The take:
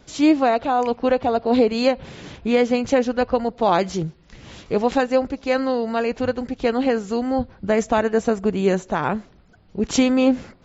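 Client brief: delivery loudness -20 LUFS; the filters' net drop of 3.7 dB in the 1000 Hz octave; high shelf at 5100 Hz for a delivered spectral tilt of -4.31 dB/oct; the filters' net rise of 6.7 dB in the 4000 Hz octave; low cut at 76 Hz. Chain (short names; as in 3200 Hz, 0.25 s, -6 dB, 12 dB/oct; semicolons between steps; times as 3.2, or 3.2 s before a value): HPF 76 Hz; bell 1000 Hz -6 dB; bell 4000 Hz +7 dB; high shelf 5100 Hz +3.5 dB; gain +1.5 dB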